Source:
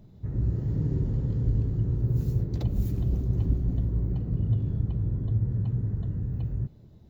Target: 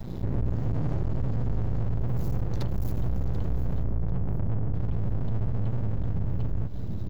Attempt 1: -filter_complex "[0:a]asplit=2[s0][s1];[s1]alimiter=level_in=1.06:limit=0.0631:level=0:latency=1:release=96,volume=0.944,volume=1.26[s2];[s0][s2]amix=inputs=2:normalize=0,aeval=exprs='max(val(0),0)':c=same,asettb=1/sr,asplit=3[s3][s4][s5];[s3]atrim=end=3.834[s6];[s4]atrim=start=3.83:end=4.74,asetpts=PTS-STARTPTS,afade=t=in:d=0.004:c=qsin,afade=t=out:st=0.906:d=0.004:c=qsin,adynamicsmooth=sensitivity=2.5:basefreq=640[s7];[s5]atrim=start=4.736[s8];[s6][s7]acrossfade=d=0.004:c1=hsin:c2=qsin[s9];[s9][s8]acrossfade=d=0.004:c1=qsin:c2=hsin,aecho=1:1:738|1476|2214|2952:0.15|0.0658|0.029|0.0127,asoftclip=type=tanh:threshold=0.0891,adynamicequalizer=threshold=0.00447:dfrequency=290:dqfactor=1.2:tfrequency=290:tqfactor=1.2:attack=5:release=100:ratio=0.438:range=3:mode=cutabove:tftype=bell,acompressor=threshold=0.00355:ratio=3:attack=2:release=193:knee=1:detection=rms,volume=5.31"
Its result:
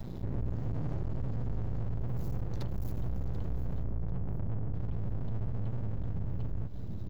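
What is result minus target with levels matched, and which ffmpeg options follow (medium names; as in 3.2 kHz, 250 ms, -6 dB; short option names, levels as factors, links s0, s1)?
compression: peak gain reduction +6.5 dB
-filter_complex "[0:a]asplit=2[s0][s1];[s1]alimiter=level_in=1.06:limit=0.0631:level=0:latency=1:release=96,volume=0.944,volume=1.26[s2];[s0][s2]amix=inputs=2:normalize=0,aeval=exprs='max(val(0),0)':c=same,asettb=1/sr,asplit=3[s3][s4][s5];[s3]atrim=end=3.834[s6];[s4]atrim=start=3.83:end=4.74,asetpts=PTS-STARTPTS,afade=t=in:d=0.004:c=qsin,afade=t=out:st=0.906:d=0.004:c=qsin,adynamicsmooth=sensitivity=2.5:basefreq=640[s7];[s5]atrim=start=4.736[s8];[s6][s7]acrossfade=d=0.004:c1=hsin:c2=qsin[s9];[s9][s8]acrossfade=d=0.004:c1=qsin:c2=hsin,aecho=1:1:738|1476|2214|2952:0.15|0.0658|0.029|0.0127,asoftclip=type=tanh:threshold=0.0891,adynamicequalizer=threshold=0.00447:dfrequency=290:dqfactor=1.2:tfrequency=290:tqfactor=1.2:attack=5:release=100:ratio=0.438:range=3:mode=cutabove:tftype=bell,acompressor=threshold=0.0112:ratio=3:attack=2:release=193:knee=1:detection=rms,volume=5.31"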